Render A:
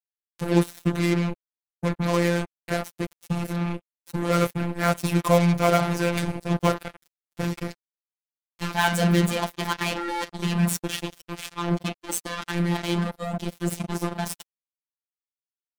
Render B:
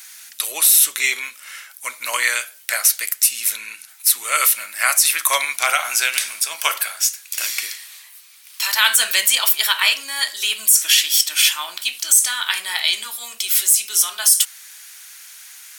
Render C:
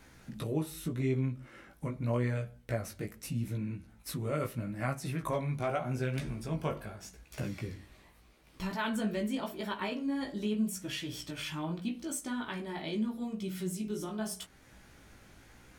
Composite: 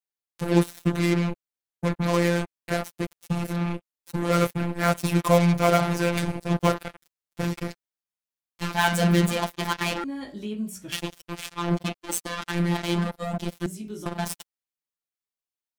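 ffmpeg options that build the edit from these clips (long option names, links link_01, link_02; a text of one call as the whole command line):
ffmpeg -i take0.wav -i take1.wav -i take2.wav -filter_complex "[2:a]asplit=2[link_01][link_02];[0:a]asplit=3[link_03][link_04][link_05];[link_03]atrim=end=10.042[link_06];[link_01]atrim=start=10.038:end=10.922[link_07];[link_04]atrim=start=10.918:end=13.662[link_08];[link_02]atrim=start=13.658:end=14.062[link_09];[link_05]atrim=start=14.058[link_10];[link_06][link_07]acrossfade=duration=0.004:curve1=hsin:curve2=hsin[link_11];[link_11][link_08]acrossfade=duration=0.004:curve1=hsin:curve2=hsin[link_12];[link_12][link_09]acrossfade=duration=0.004:curve1=hsin:curve2=hsin[link_13];[link_13][link_10]acrossfade=duration=0.004:curve1=hsin:curve2=hsin" out.wav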